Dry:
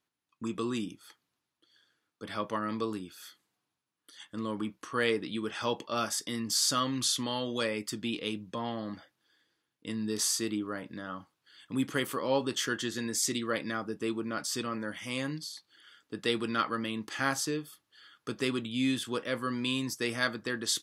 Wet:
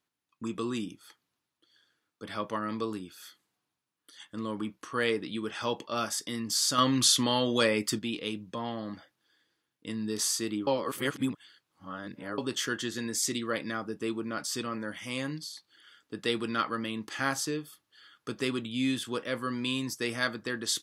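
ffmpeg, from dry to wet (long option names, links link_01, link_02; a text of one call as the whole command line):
ffmpeg -i in.wav -filter_complex "[0:a]asettb=1/sr,asplit=3[link_01][link_02][link_03];[link_01]atrim=end=6.784[link_04];[link_02]atrim=start=6.78:end=7.99,asetpts=PTS-STARTPTS,afade=type=in:duration=0.004:curve=qsin,afade=type=out:start_time=1.206:duration=0.004:curve=qsin,acontrast=60[link_05];[link_03]atrim=start=7.986[link_06];[link_04][link_05]acrossfade=duration=0.004:curve1=hsin:curve2=qsin[link_07];[link_07][link_06]acrossfade=duration=0.004:curve1=qsin:curve2=hsin,asplit=3[link_08][link_09][link_10];[link_08]atrim=end=10.672[link_11];[link_09]atrim=start=10.668:end=12.382,asetpts=PTS-STARTPTS,areverse[link_12];[link_10]atrim=start=12.378[link_13];[link_11][link_12]acrossfade=duration=0.004:curve1=hsin:curve2=hsin[link_14];[link_14][link_13]acrossfade=duration=0.004:curve1=hsin:curve2=hsin" out.wav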